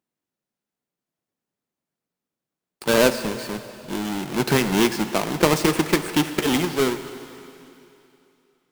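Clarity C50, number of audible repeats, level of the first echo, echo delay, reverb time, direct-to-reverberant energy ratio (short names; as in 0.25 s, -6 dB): 10.5 dB, none, none, none, 2.9 s, 10.0 dB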